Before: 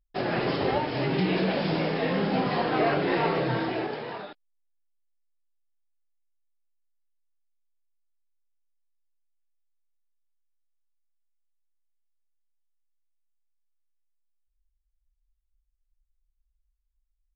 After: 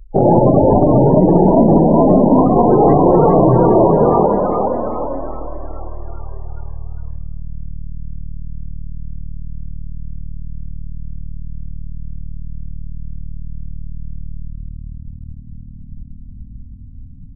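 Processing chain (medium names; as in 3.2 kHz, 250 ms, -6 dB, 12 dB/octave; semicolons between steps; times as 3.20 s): tilt EQ -4.5 dB/octave; compression 8:1, threshold -23 dBFS, peak gain reduction 12 dB; spring tank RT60 1.9 s, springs 39/56 ms, chirp 40 ms, DRR 10.5 dB; loudest bins only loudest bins 32; on a send: frequency-shifting echo 405 ms, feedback 54%, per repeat +38 Hz, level -5.5 dB; on the sum: low-pass that closes with the level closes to 1.2 kHz, closed at -22.5 dBFS; formant shift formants +3 st; dynamic bell 750 Hz, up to +4 dB, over -41 dBFS, Q 0.91; loudness maximiser +16 dB; trim -1 dB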